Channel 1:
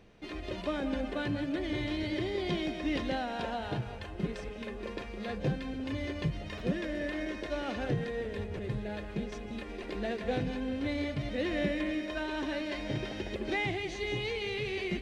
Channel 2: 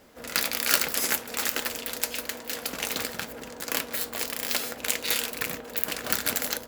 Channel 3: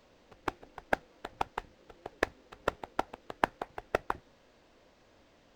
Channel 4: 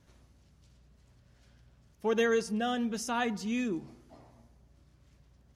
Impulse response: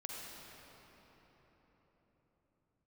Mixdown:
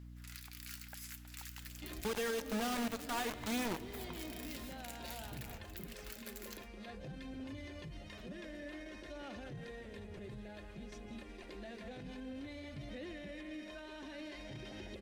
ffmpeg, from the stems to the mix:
-filter_complex "[0:a]highshelf=f=6.5k:g=10.5,bandreject=f=450:w=12,alimiter=level_in=6dB:limit=-24dB:level=0:latency=1:release=26,volume=-6dB,adelay=1600,volume=-10dB[a];[1:a]highpass=1.4k,asoftclip=type=tanh:threshold=-5.5dB,volume=-15dB,asplit=2[b][c];[c]volume=-23.5dB[d];[2:a]volume=-15.5dB[e];[3:a]acrusher=bits=4:mix=0:aa=0.000001,aeval=exprs='val(0)+0.00316*(sin(2*PI*60*n/s)+sin(2*PI*2*60*n/s)/2+sin(2*PI*3*60*n/s)/3+sin(2*PI*4*60*n/s)/4+sin(2*PI*5*60*n/s)/5)':c=same,volume=-3dB,asplit=2[f][g];[g]volume=-12.5dB[h];[b][e]amix=inputs=2:normalize=0,highpass=1k,acompressor=threshold=-47dB:ratio=6,volume=0dB[i];[4:a]atrim=start_sample=2205[j];[d][h]amix=inputs=2:normalize=0[k];[k][j]afir=irnorm=-1:irlink=0[l];[a][f][i][l]amix=inputs=4:normalize=0,aphaser=in_gain=1:out_gain=1:delay=4.9:decay=0.22:speed=0.54:type=sinusoidal,alimiter=level_in=4.5dB:limit=-24dB:level=0:latency=1:release=279,volume=-4.5dB"

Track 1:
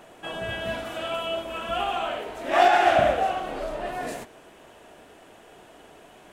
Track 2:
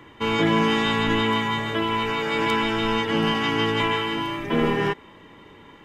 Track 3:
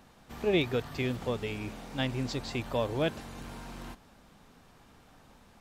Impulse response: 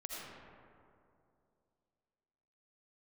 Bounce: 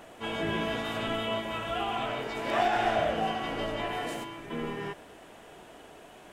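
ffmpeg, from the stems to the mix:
-filter_complex "[0:a]acompressor=threshold=-38dB:ratio=1.5,volume=-0.5dB[a];[1:a]volume=-13.5dB[b];[2:a]volume=-13.5dB[c];[a][b][c]amix=inputs=3:normalize=0"

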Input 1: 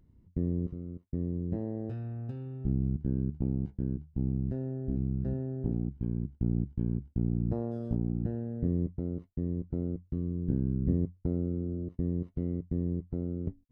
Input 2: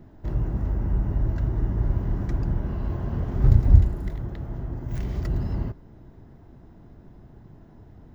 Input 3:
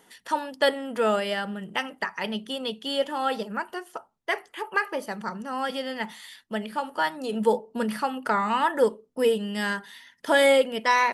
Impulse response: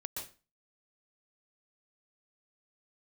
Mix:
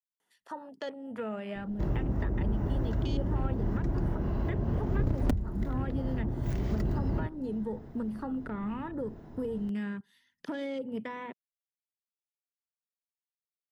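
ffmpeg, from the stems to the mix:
-filter_complex "[1:a]aeval=exprs='(mod(1.58*val(0)+1,2)-1)/1.58':c=same,lowshelf=f=400:g=9,asoftclip=type=hard:threshold=-1dB,adelay=1550,volume=2dB[a];[2:a]afwtdn=0.0224,adelay=200,volume=-3dB,asubboost=boost=11.5:cutoff=200,alimiter=limit=-21dB:level=0:latency=1:release=213,volume=0dB[b];[a][b]amix=inputs=2:normalize=0,lowshelf=f=280:g=-11.5,acrossover=split=200|670[c][d][e];[c]acompressor=threshold=-28dB:ratio=4[f];[d]acompressor=threshold=-33dB:ratio=4[g];[e]acompressor=threshold=-46dB:ratio=4[h];[f][g][h]amix=inputs=3:normalize=0"

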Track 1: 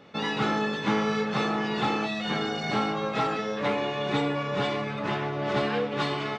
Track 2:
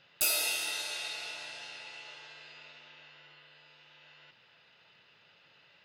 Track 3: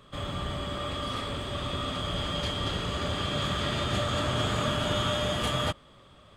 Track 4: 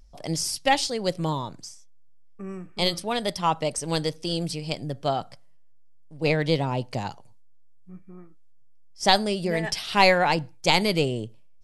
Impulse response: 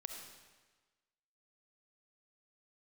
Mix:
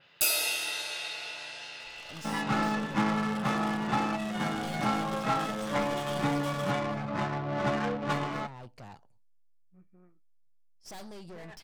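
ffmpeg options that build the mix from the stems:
-filter_complex "[0:a]equalizer=f=420:w=3.8:g=-12.5,adynamicsmooth=sensitivity=3:basefreq=570,adelay=2100,volume=-0.5dB[a];[1:a]adynamicequalizer=threshold=0.00631:dfrequency=4600:dqfactor=0.7:tfrequency=4600:tqfactor=0.7:attack=5:release=100:ratio=0.375:range=2.5:mode=cutabove:tftype=highshelf,volume=2.5dB[b];[2:a]highpass=1k,flanger=delay=15:depth=3.3:speed=1,acrusher=bits=4:mix=0:aa=0.5,adelay=1000,volume=-7.5dB[c];[3:a]aeval=exprs='(tanh(44.7*val(0)+0.6)-tanh(0.6))/44.7':c=same,adynamicequalizer=threshold=0.00224:dfrequency=2400:dqfactor=0.7:tfrequency=2400:tqfactor=0.7:attack=5:release=100:ratio=0.375:range=3:mode=cutabove:tftype=highshelf,adelay=1850,volume=-10dB[d];[a][b][c][d]amix=inputs=4:normalize=0"

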